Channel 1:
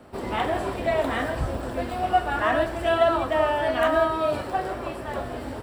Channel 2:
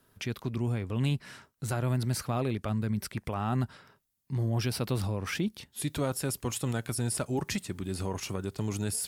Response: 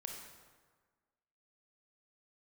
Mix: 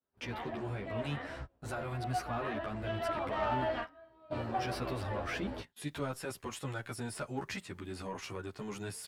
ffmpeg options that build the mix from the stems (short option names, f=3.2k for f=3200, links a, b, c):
-filter_complex "[0:a]lowpass=4k,volume=-5.5dB,afade=t=in:st=2.59:d=0.78:silence=0.398107[a];[1:a]agate=range=-23dB:threshold=-53dB:ratio=16:detection=peak,adynamicequalizer=threshold=0.00562:dfrequency=1600:dqfactor=0.91:tfrequency=1600:tqfactor=0.91:attack=5:release=100:ratio=0.375:range=1.5:mode=boostabove:tftype=bell,asplit=2[b][c];[c]highpass=f=720:p=1,volume=9dB,asoftclip=type=tanh:threshold=-19.5dB[d];[b][d]amix=inputs=2:normalize=0,lowpass=f=2.2k:p=1,volume=-6dB,volume=-2.5dB,asplit=2[e][f];[f]apad=whole_len=247979[g];[a][g]sidechaingate=range=-28dB:threshold=-50dB:ratio=16:detection=peak[h];[h][e]amix=inputs=2:normalize=0,asoftclip=type=tanh:threshold=-22dB,asplit=2[i][j];[j]adelay=11.6,afreqshift=-1.5[k];[i][k]amix=inputs=2:normalize=1"